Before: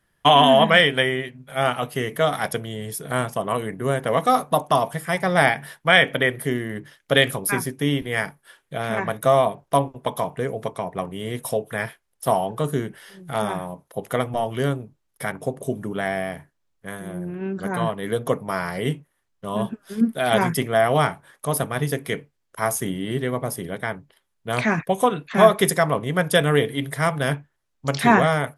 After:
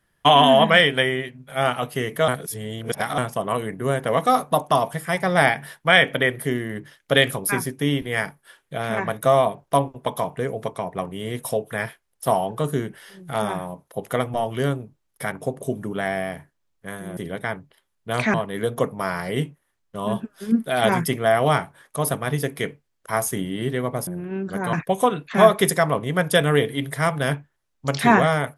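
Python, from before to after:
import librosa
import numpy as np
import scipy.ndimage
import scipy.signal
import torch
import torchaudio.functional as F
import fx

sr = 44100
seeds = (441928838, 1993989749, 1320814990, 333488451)

y = fx.edit(x, sr, fx.reverse_span(start_s=2.28, length_s=0.9),
    fx.swap(start_s=17.17, length_s=0.66, other_s=23.56, other_length_s=1.17), tone=tone)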